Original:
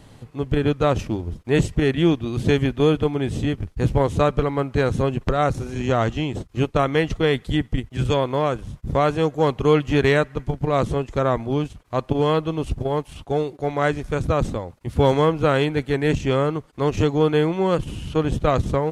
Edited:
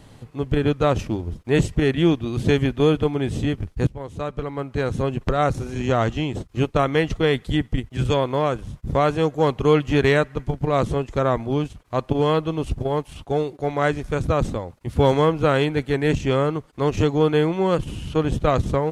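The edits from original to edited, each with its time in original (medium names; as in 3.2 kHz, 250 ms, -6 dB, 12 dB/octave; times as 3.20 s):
3.87–5.40 s: fade in, from -19.5 dB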